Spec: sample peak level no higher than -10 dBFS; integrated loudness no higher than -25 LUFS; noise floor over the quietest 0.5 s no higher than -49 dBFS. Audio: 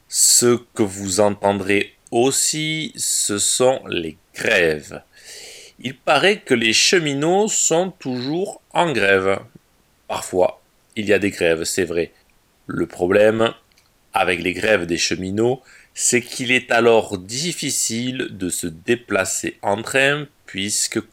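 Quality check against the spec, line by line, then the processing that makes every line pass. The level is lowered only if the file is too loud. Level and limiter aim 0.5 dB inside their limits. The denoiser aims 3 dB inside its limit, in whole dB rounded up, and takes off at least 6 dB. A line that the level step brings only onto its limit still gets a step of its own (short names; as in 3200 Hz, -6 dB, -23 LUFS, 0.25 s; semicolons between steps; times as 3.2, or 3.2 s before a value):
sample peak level -3.0 dBFS: fail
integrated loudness -18.5 LUFS: fail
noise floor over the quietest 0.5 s -59 dBFS: OK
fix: gain -7 dB; limiter -10.5 dBFS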